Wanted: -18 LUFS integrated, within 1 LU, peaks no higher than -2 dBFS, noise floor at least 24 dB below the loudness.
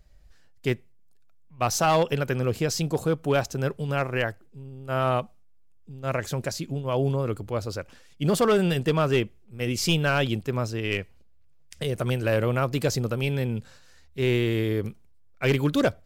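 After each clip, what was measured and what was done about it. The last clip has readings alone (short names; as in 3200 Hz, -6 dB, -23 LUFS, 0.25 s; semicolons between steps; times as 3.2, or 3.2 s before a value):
clipped 0.6%; flat tops at -15.0 dBFS; loudness -26.0 LUFS; peak -15.0 dBFS; loudness target -18.0 LUFS
-> clip repair -15 dBFS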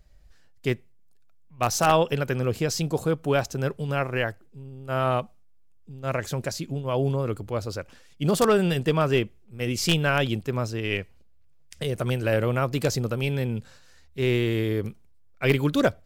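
clipped 0.0%; loudness -26.0 LUFS; peak -6.0 dBFS; loudness target -18.0 LUFS
-> gain +8 dB; limiter -2 dBFS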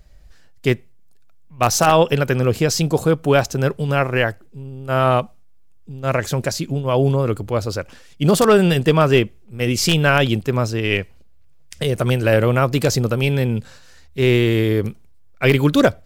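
loudness -18.0 LUFS; peak -2.0 dBFS; noise floor -45 dBFS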